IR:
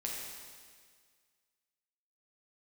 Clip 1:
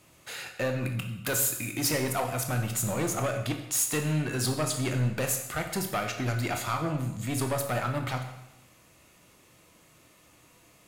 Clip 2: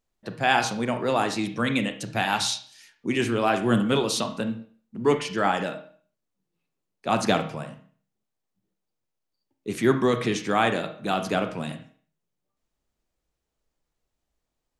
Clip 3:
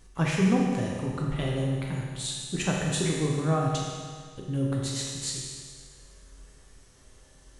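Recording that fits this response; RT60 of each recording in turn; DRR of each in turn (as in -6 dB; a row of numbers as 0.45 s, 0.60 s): 3; 0.90 s, 0.50 s, 1.8 s; 4.0 dB, 7.5 dB, -3.0 dB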